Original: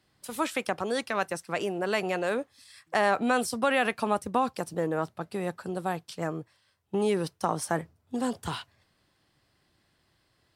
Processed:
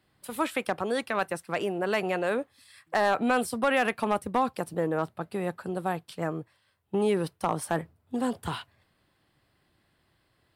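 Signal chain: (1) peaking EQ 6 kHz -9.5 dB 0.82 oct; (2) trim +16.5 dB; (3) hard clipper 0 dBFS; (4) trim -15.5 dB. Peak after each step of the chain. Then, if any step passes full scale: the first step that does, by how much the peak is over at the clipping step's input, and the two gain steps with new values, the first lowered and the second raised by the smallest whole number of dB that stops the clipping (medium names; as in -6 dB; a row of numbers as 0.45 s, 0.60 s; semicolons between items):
-11.5 dBFS, +5.0 dBFS, 0.0 dBFS, -15.5 dBFS; step 2, 5.0 dB; step 2 +11.5 dB, step 4 -10.5 dB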